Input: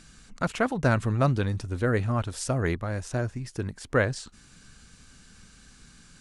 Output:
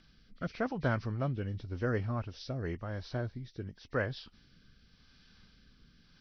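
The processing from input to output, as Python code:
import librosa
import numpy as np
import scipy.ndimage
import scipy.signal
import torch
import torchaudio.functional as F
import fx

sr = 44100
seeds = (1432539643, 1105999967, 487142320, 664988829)

y = fx.freq_compress(x, sr, knee_hz=1800.0, ratio=1.5)
y = fx.rotary(y, sr, hz=0.9)
y = y * 10.0 ** (-7.0 / 20.0)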